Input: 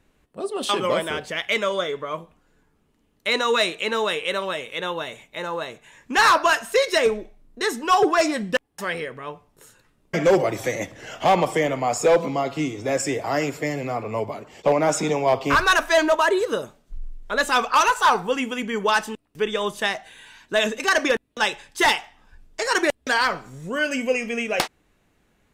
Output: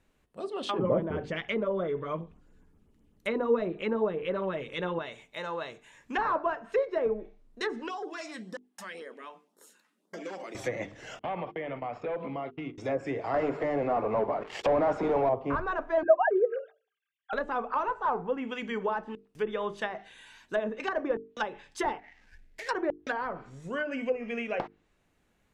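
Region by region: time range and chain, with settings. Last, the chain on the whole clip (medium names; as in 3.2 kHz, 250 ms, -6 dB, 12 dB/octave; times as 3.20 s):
0.78–4.99 s: bass shelf 390 Hz +12 dB + LFO notch sine 7.7 Hz 580–4800 Hz
7.88–10.55 s: LFO notch sine 1.9 Hz 370–2700 Hz + brick-wall FIR high-pass 180 Hz + compression 2.5:1, threshold -34 dBFS
11.19–12.78 s: gate -29 dBFS, range -40 dB + low-pass 3 kHz 24 dB/octave + compression 5:1, threshold -25 dBFS
13.34–15.29 s: high-pass 990 Hz 6 dB/octave + band-stop 2.4 kHz, Q 26 + waveshaping leveller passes 5
16.03–17.33 s: formants replaced by sine waves + treble shelf 2.6 kHz +9.5 dB + small resonant body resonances 760/1600 Hz, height 17 dB
21.99–22.69 s: median filter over 15 samples + resonant high shelf 1.5 kHz +8.5 dB, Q 3 + compression 2.5:1, threshold -36 dBFS
whole clip: hum notches 50/100/150/200/250/300/350/400/450 Hz; low-pass that closes with the level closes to 850 Hz, closed at -18 dBFS; trim -6.5 dB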